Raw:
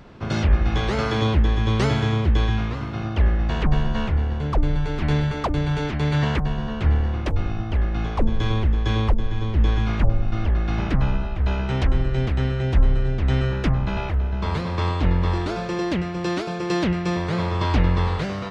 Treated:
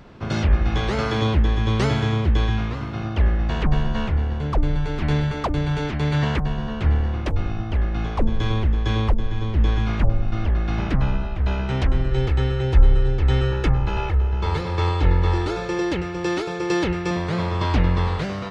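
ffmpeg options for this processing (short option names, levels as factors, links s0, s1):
-filter_complex "[0:a]asettb=1/sr,asplit=3[s0][s1][s2];[s0]atrim=end=12.114[s3];[s1]atrim=start=12.11:end=17.11,asetpts=PTS-STARTPTS,afade=t=in:d=0.004:c=qsin,afade=t=out:st=4.996:d=0.004:c=qsin,aecho=1:1:2.3:0.56,atrim=end_sample=220500[s4];[s2]atrim=start=17.106[s5];[s3][s4]acrossfade=d=0.004:c1=hsin:c2=qsin[s6];[s6][s5]acrossfade=d=0.004:c1=qsin:c2=hsin"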